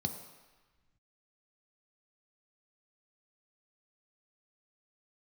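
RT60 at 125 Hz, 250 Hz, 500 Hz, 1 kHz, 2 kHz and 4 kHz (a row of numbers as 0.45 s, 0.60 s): 1.9 s, 1.3 s, 1.1 s, 1.3 s, 1.5 s, 1.2 s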